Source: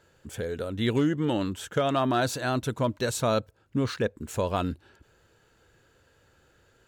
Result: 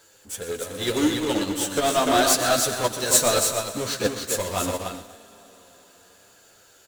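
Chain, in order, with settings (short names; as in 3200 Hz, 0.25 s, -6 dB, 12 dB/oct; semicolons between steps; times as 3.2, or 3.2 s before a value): tone controls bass -11 dB, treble +14 dB; echo 0.295 s -5 dB; Schroeder reverb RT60 3.8 s, combs from 28 ms, DRR 12.5 dB; power-law curve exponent 0.5; flange 0.77 Hz, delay 9 ms, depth 3.1 ms, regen -9%; feedback echo 0.122 s, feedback 57%, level -9 dB; upward expander 2.5:1, over -30 dBFS; gain +2.5 dB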